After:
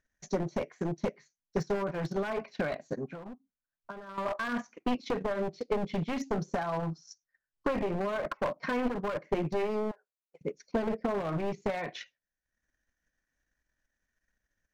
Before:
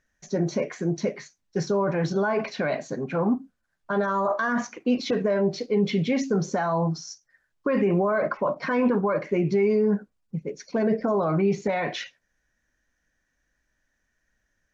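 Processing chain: one-sided fold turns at -21 dBFS; 9.91–10.41 inverse Chebyshev high-pass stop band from 250 Hz, stop band 40 dB; transient shaper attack +7 dB, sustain -11 dB; 3.1–4.18 compressor 6:1, threshold -34 dBFS, peak gain reduction 15 dB; gain -8 dB

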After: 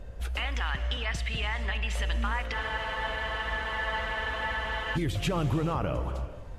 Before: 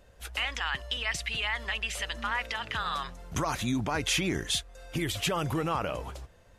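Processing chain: tilt -2.5 dB/oct; compressor 2:1, threshold -39 dBFS, peak gain reduction 10.5 dB; non-linear reverb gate 0.49 s flat, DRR 10 dB; spectral freeze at 2.55, 2.41 s; gain +6.5 dB

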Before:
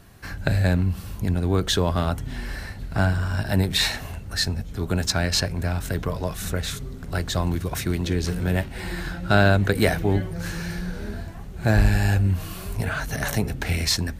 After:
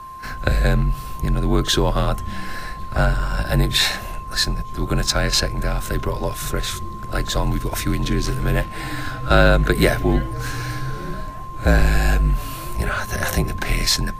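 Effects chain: whine 1100 Hz -37 dBFS; pre-echo 37 ms -17.5 dB; frequency shift -49 Hz; gain +4 dB

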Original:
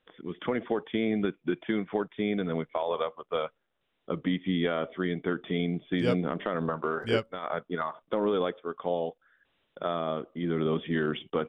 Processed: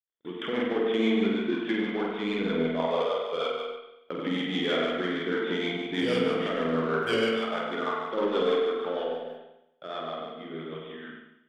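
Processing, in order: ending faded out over 3.02 s; dynamic EQ 340 Hz, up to +6 dB, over -42 dBFS, Q 1.7; in parallel at -3 dB: soft clip -27 dBFS, distortion -8 dB; on the sum: flutter echo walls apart 8.4 m, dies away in 1.2 s; rotary speaker horn 6.3 Hz; gate -38 dBFS, range -50 dB; tilt +3 dB/oct; on a send at -1 dB: reverb RT60 0.85 s, pre-delay 44 ms; on the sum: ending taper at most 160 dB/s; gain -3.5 dB

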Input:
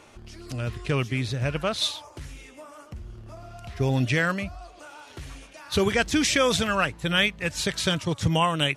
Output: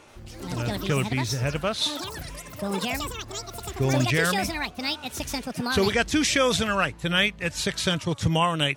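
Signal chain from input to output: echoes that change speed 84 ms, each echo +7 st, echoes 3, each echo -6 dB

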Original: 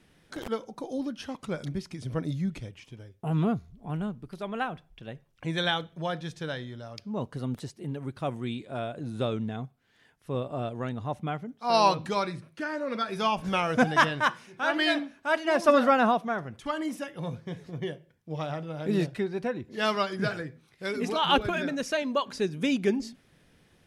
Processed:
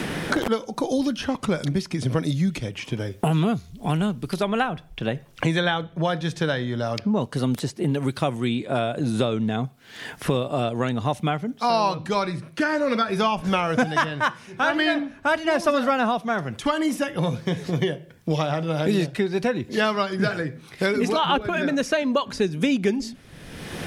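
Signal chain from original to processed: three-band squash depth 100%; gain +5.5 dB

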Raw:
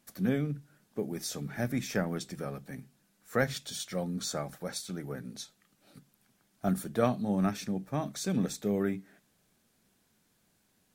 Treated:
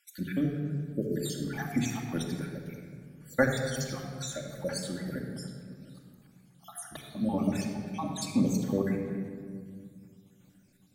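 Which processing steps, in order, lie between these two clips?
random spectral dropouts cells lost 62%; 4.06–4.55 compressor, threshold -39 dBFS, peak gain reduction 7.5 dB; shoebox room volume 4000 m³, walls mixed, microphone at 2.4 m; gain +2.5 dB

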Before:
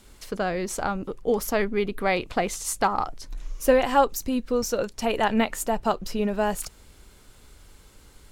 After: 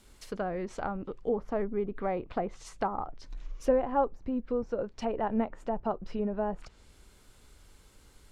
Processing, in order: treble ducked by the level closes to 940 Hz, closed at -21.5 dBFS; gain -6 dB

